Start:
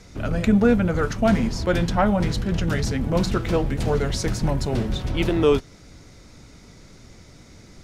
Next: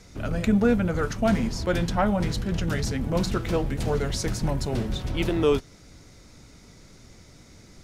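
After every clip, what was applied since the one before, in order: treble shelf 7 kHz +5 dB; trim -3.5 dB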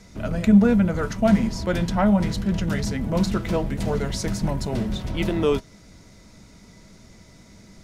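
small resonant body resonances 200/640/960/2000 Hz, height 9 dB, ringing for 100 ms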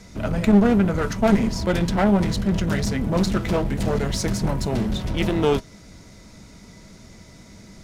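one-sided clip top -25.5 dBFS; trim +3.5 dB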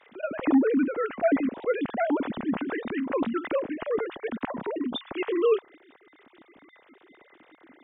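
formants replaced by sine waves; trim -6.5 dB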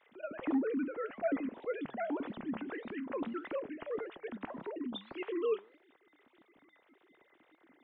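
flange 1.7 Hz, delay 4.3 ms, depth 6.2 ms, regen +89%; trim -6 dB

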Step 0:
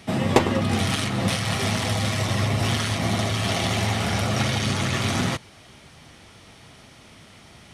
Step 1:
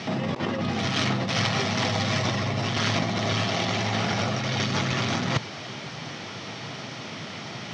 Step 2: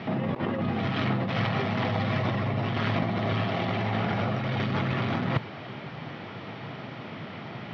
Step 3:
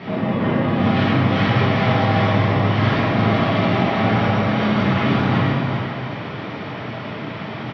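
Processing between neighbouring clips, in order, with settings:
elliptic band-pass 120–5700 Hz, stop band 40 dB; compressor with a negative ratio -32 dBFS, ratio -1; trim +6 dB
modulation noise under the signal 24 dB; distance through air 410 m
delay 393 ms -7 dB; plate-style reverb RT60 2 s, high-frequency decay 0.7×, DRR -8.5 dB

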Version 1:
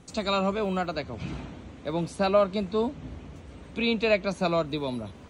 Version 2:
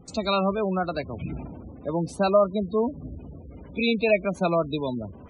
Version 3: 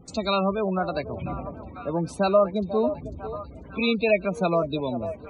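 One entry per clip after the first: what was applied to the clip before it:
spectral gate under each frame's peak -20 dB strong; trim +2.5 dB
repeats whose band climbs or falls 496 ms, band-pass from 620 Hz, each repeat 0.7 oct, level -8.5 dB

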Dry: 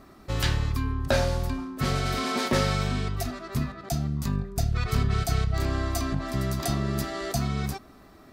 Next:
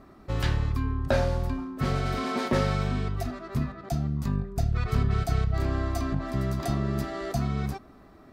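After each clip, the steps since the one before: treble shelf 2.8 kHz -10.5 dB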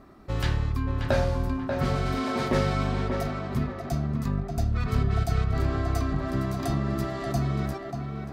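tape echo 585 ms, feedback 37%, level -3.5 dB, low-pass 2.3 kHz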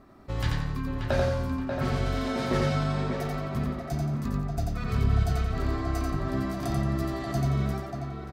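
feedback delay 88 ms, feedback 35%, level -3 dB; trim -3 dB

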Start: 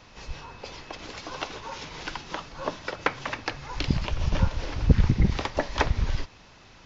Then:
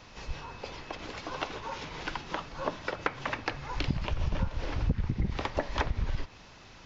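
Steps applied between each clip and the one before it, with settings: dynamic bell 6.2 kHz, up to -6 dB, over -51 dBFS, Q 0.74; compression 6:1, threshold -25 dBFS, peak gain reduction 14 dB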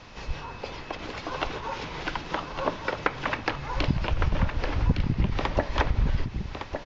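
distance through air 63 m; delay 1160 ms -7.5 dB; trim +5 dB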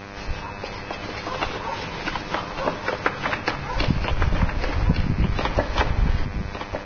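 mains buzz 100 Hz, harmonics 26, -41 dBFS -3 dB/octave; on a send at -12 dB: reverberation RT60 1.5 s, pre-delay 3 ms; on the sum: trim +3 dB; Vorbis 16 kbps 16 kHz

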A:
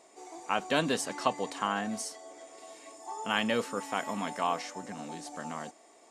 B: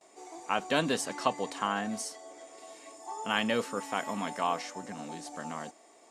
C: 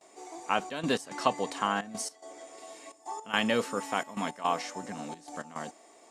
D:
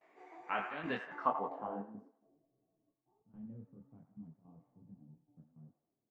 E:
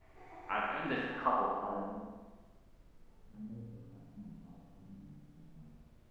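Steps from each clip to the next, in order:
gate with hold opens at -49 dBFS
trance gate "xxxxx.x." 108 bpm -12 dB; trim +2 dB
feedback echo behind a band-pass 87 ms, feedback 60%, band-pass 1.4 kHz, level -7 dB; low-pass sweep 2 kHz -> 130 Hz, 1.00–2.47 s; detune thickener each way 43 cents; trim -7 dB
added noise brown -62 dBFS; flutter echo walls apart 10.5 m, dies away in 1.3 s

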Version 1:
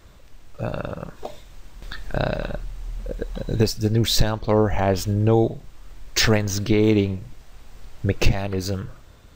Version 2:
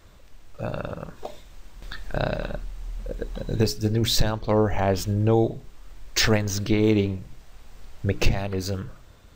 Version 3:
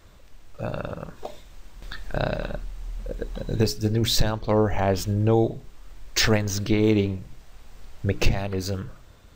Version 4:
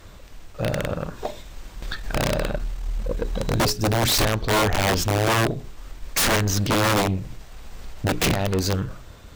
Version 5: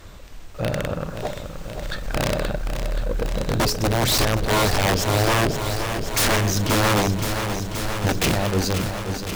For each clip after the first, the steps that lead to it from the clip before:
hum notches 60/120/180/240/300/360/420 Hz; trim -2 dB
no audible change
integer overflow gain 16.5 dB; valve stage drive 25 dB, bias 0.3; trim +8.5 dB
in parallel at -11 dB: wavefolder -28 dBFS; on the sum: bit-crushed delay 526 ms, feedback 80%, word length 8-bit, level -8.5 dB

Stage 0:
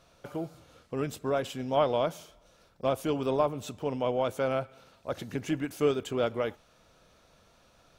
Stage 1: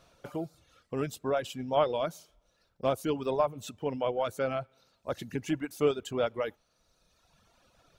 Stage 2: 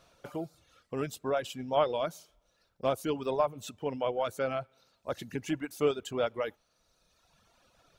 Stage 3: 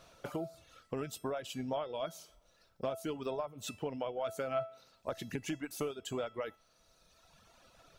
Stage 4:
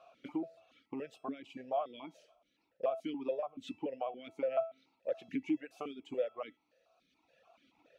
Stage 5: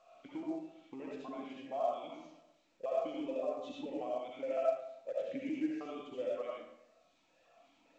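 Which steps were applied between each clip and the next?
reverb removal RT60 1.5 s
bass shelf 360 Hz -3 dB
compression 12:1, threshold -37 dBFS, peak gain reduction 16.5 dB; feedback comb 660 Hz, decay 0.35 s, mix 70%; trim +13 dB
stepped vowel filter 7 Hz; trim +8.5 dB
algorithmic reverb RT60 0.81 s, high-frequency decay 0.75×, pre-delay 35 ms, DRR -5 dB; trim -6.5 dB; µ-law 128 kbps 16 kHz

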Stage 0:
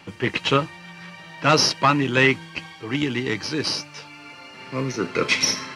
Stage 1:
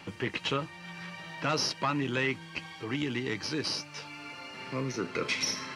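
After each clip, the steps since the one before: in parallel at +2 dB: peak limiter -14.5 dBFS, peak gain reduction 10.5 dB; on the sum: compression 1.5:1, threshold -31 dBFS, peak gain reduction 8 dB; trim -8.5 dB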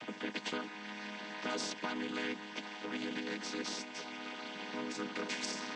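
vocoder on a held chord minor triad, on G#3; spectrum-flattening compressor 2:1; trim -3.5 dB

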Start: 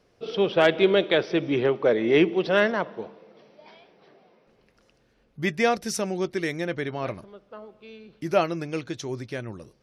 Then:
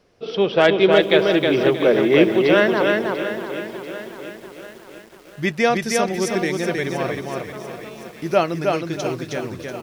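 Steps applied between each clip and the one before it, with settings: hum notches 60/120 Hz; on a send: feedback delay 315 ms, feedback 26%, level -3.5 dB; on the sum: bit-crushed delay 690 ms, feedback 55%, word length 7-bit, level -12 dB; trim +4 dB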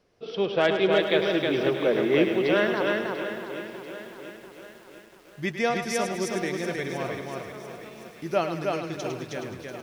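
thinning echo 105 ms, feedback 42%, level -8 dB; trim -7.5 dB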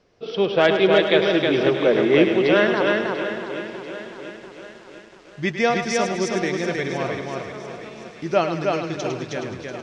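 low-pass 7.1 kHz 24 dB/octave; trim +5.5 dB

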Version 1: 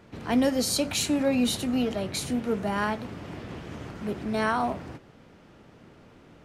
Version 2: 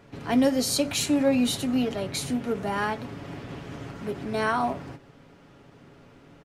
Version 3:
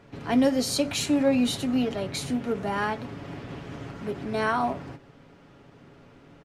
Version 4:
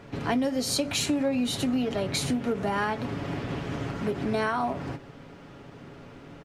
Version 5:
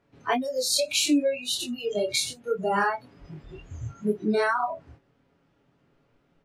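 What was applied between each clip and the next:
comb 7.2 ms, depth 40%; endings held to a fixed fall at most 240 dB/s
treble shelf 8.9 kHz -7.5 dB
compression 6:1, threshold -30 dBFS, peak gain reduction 12.5 dB; trim +6 dB
chorus 1.9 Hz, depth 3.7 ms; spectral noise reduction 25 dB; trim +7.5 dB

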